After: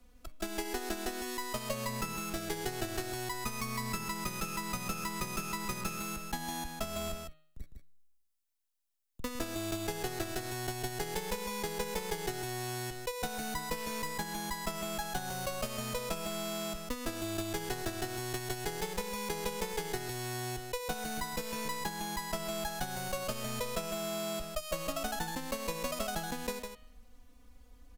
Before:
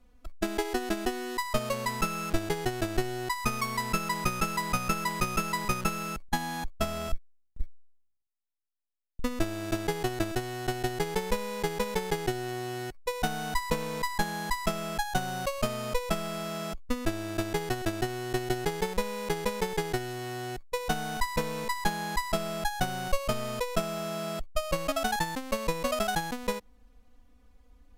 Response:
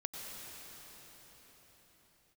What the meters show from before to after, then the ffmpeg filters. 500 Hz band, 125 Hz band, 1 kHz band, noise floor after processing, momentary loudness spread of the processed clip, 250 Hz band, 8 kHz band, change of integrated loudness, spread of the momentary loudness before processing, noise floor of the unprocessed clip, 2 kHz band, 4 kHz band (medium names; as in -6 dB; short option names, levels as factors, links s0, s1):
-6.0 dB, -6.0 dB, -7.0 dB, -61 dBFS, 2 LU, -6.0 dB, -0.5 dB, -5.0 dB, 6 LU, -63 dBFS, -6.0 dB, -3.0 dB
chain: -filter_complex "[0:a]highshelf=f=3900:g=8,bandreject=f=155.8:t=h:w=4,bandreject=f=311.6:t=h:w=4,bandreject=f=467.4:t=h:w=4,bandreject=f=623.2:t=h:w=4,bandreject=f=779:t=h:w=4,bandreject=f=934.8:t=h:w=4,bandreject=f=1090.6:t=h:w=4,bandreject=f=1246.4:t=h:w=4,bandreject=f=1402.2:t=h:w=4,bandreject=f=1558:t=h:w=4,bandreject=f=1713.8:t=h:w=4,bandreject=f=1869.6:t=h:w=4,bandreject=f=2025.4:t=h:w=4,bandreject=f=2181.2:t=h:w=4,bandreject=f=2337:t=h:w=4,bandreject=f=2492.8:t=h:w=4,bandreject=f=2648.6:t=h:w=4,bandreject=f=2804.4:t=h:w=4,bandreject=f=2960.2:t=h:w=4,bandreject=f=3116:t=h:w=4,bandreject=f=3271.8:t=h:w=4,bandreject=f=3427.6:t=h:w=4,bandreject=f=3583.4:t=h:w=4,bandreject=f=3739.2:t=h:w=4,bandreject=f=3895:t=h:w=4,bandreject=f=4050.8:t=h:w=4,bandreject=f=4206.6:t=h:w=4,bandreject=f=4362.4:t=h:w=4,acrossover=split=100|500[s0][s1][s2];[s0]acompressor=threshold=0.00708:ratio=4[s3];[s1]acompressor=threshold=0.00891:ratio=4[s4];[s2]acompressor=threshold=0.0158:ratio=4[s5];[s3][s4][s5]amix=inputs=3:normalize=0,asoftclip=type=hard:threshold=0.0422,aecho=1:1:155:0.501"